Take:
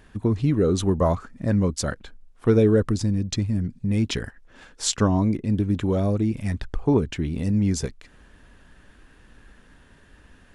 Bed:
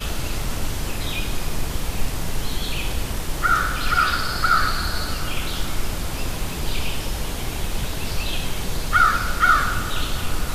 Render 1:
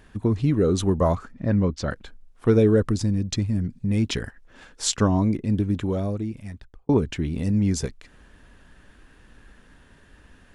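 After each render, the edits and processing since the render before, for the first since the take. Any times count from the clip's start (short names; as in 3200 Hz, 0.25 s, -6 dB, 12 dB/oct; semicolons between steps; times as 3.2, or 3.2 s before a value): 1.32–1.91 Bessel low-pass 3800 Hz, order 4; 5.57–6.89 fade out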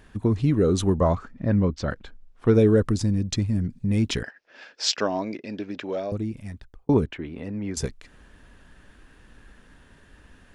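0.97–2.55 air absorption 65 m; 4.23–6.12 speaker cabinet 400–5900 Hz, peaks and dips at 620 Hz +5 dB, 1100 Hz -4 dB, 1700 Hz +4 dB, 2500 Hz +6 dB, 5000 Hz +8 dB; 7.06–7.77 three-band isolator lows -14 dB, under 310 Hz, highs -21 dB, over 3100 Hz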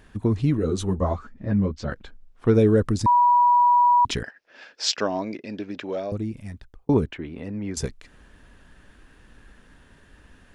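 0.57–1.92 ensemble effect; 3.06–4.05 bleep 971 Hz -13.5 dBFS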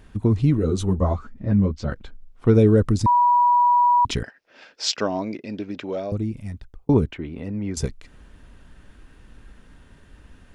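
low shelf 210 Hz +5.5 dB; notch 1700 Hz, Q 13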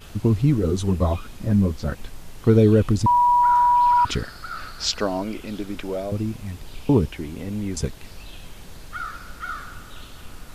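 add bed -16 dB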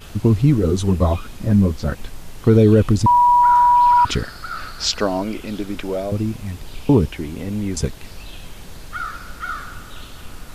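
gain +4 dB; limiter -3 dBFS, peak gain reduction 2 dB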